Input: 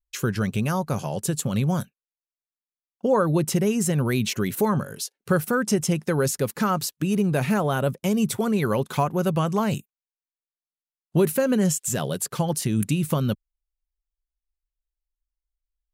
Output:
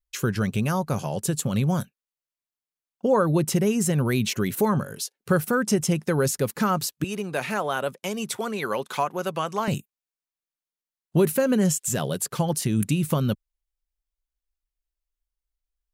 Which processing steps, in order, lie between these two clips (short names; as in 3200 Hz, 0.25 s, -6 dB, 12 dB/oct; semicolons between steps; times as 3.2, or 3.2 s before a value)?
7.04–9.68 weighting filter A